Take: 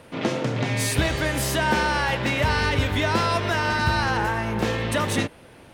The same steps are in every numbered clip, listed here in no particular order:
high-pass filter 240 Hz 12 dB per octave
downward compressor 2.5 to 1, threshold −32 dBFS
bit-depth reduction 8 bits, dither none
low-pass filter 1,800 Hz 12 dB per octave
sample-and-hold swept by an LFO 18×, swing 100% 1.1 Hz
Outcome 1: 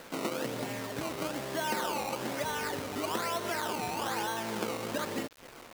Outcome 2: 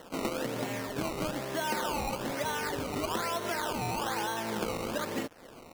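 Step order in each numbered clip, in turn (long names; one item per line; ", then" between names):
downward compressor, then low-pass filter, then sample-and-hold swept by an LFO, then high-pass filter, then bit-depth reduction
high-pass filter, then downward compressor, then bit-depth reduction, then low-pass filter, then sample-and-hold swept by an LFO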